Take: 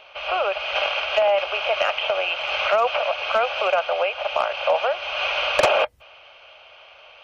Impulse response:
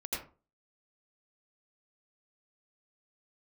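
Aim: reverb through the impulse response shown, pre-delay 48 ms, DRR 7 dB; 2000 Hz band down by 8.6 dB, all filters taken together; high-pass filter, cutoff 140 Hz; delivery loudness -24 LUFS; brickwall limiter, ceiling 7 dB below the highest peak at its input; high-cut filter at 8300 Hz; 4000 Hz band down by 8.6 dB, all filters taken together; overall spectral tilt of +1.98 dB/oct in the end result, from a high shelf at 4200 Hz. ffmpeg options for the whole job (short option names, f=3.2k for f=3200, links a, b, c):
-filter_complex "[0:a]highpass=140,lowpass=8.3k,equalizer=f=2k:t=o:g=-8.5,equalizer=f=4k:t=o:g=-4,highshelf=f=4.2k:g=-7.5,alimiter=limit=-16.5dB:level=0:latency=1,asplit=2[a][b];[1:a]atrim=start_sample=2205,adelay=48[c];[b][c]afir=irnorm=-1:irlink=0,volume=-9.5dB[d];[a][d]amix=inputs=2:normalize=0,volume=2dB"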